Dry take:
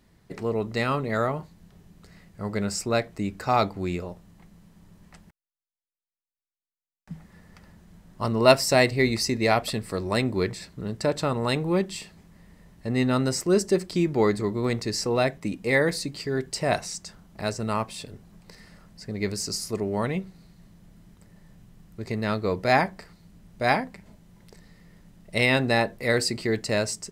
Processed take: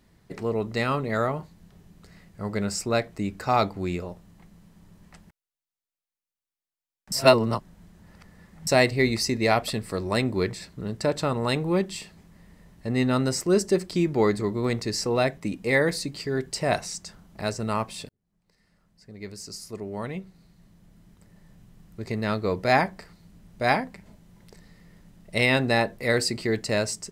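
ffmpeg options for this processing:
-filter_complex "[0:a]asplit=4[s0][s1][s2][s3];[s0]atrim=end=7.122[s4];[s1]atrim=start=7.118:end=8.672,asetpts=PTS-STARTPTS,areverse[s5];[s2]atrim=start=8.668:end=18.09,asetpts=PTS-STARTPTS,afade=t=out:st=9.418:d=0.004:c=hsin[s6];[s3]atrim=start=18.09,asetpts=PTS-STARTPTS,afade=t=in:d=3.91[s7];[s4][s5]acrossfade=d=0.004:c1=hsin:c2=hsin[s8];[s6][s7]concat=n=2:v=0:a=1[s9];[s8][s9]acrossfade=d=0.004:c1=hsin:c2=hsin"

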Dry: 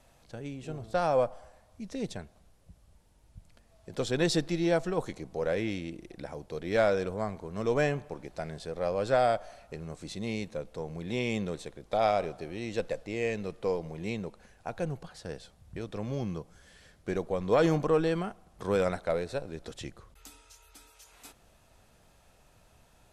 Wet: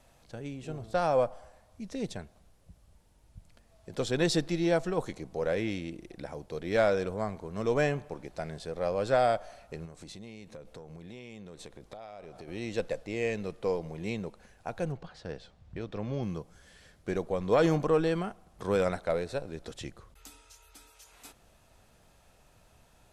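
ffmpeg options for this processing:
-filter_complex "[0:a]asettb=1/sr,asplit=3[s0][s1][s2];[s0]atrim=end=9.854[s3];[s1]atrim=start=9.85:end=12.48,asetpts=PTS-STARTPTS,afade=t=in:d=0.004:c=qsin,afade=t=out:st=2.626:d=0.004:c=qsin,acompressor=threshold=0.00891:ratio=16:attack=3.2:release=140:knee=1:detection=peak[s4];[s2]atrim=start=12.476[s5];[s3][s4]acrossfade=d=0.004:c1=hsin:c2=qsin[s6];[s6][s5]acrossfade=d=0.004:c1=qsin:c2=hsin,asettb=1/sr,asplit=3[s7][s8][s9];[s7]atrim=end=14.924[s10];[s8]atrim=start=14.92:end=16.23,asetpts=PTS-STARTPTS,afade=t=in:d=0.004:c=qsin,afade=t=out:st=1.306:d=0.004:c=qsin,lowpass=4600[s11];[s9]atrim=start=16.226[s12];[s10][s11]acrossfade=d=0.004:c1=hsin:c2=qsin[s13];[s13][s12]acrossfade=d=0.004:c1=qsin:c2=hsin"

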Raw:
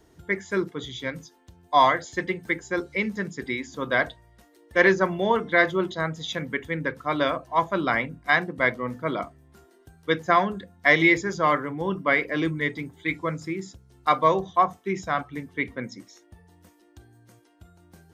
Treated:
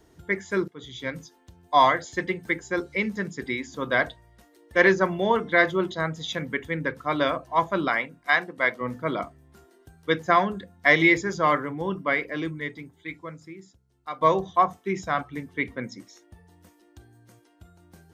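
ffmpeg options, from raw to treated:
-filter_complex "[0:a]asettb=1/sr,asplit=3[s0][s1][s2];[s0]atrim=end=7.884[s3];[s1]atrim=start=7.88:end=8.81,asetpts=PTS-STARTPTS,afade=t=in:d=0.004:c=qsin,afade=t=out:st=0.926:d=0.004:c=qsin,highpass=f=510:p=1[s4];[s2]atrim=start=8.806[s5];[s3][s4]acrossfade=d=0.004:c1=hsin:c2=qsin[s6];[s6][s5]acrossfade=d=0.004:c1=qsin:c2=hsin,asplit=3[s7][s8][s9];[s7]atrim=end=0.68,asetpts=PTS-STARTPTS,afade=t=out:st=0.676:d=0.004:c=hsin:silence=0.177828[s10];[s8]atrim=start=0.68:end=14.21,asetpts=PTS-STARTPTS,afade=t=in:d=0.43:silence=0.177828,afade=t=out:st=10.95:d=2.58:c=qua:silence=0.199526[s11];[s9]atrim=start=14.21,asetpts=PTS-STARTPTS,afade=t=in:d=0.004:c=hsin:silence=0.199526[s12];[s10][s11][s12]concat=n=3:v=0:a=1"

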